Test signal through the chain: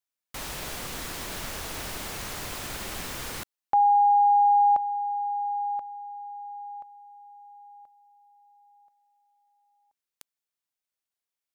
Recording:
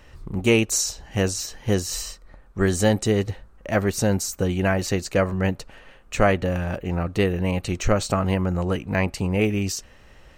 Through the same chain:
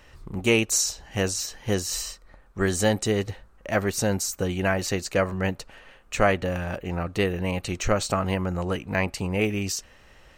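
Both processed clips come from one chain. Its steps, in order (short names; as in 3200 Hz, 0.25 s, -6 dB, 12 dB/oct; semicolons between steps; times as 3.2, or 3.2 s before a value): low shelf 480 Hz -5 dB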